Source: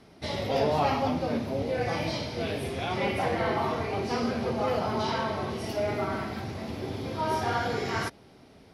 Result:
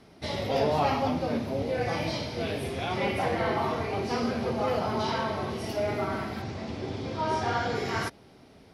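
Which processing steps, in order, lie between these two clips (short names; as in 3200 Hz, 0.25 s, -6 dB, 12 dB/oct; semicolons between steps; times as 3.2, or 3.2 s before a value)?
6.42–7.75 LPF 8600 Hz 24 dB/oct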